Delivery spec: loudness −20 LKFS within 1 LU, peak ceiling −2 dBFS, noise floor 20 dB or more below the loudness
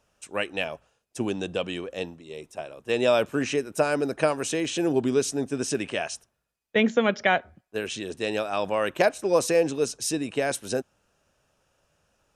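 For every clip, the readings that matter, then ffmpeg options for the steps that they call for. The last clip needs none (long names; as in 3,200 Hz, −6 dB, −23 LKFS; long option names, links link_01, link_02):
integrated loudness −26.5 LKFS; sample peak −6.0 dBFS; target loudness −20.0 LKFS
→ -af "volume=6.5dB,alimiter=limit=-2dB:level=0:latency=1"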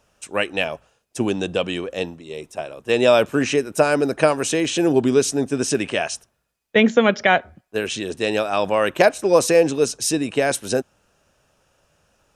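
integrated loudness −20.0 LKFS; sample peak −2.0 dBFS; background noise floor −71 dBFS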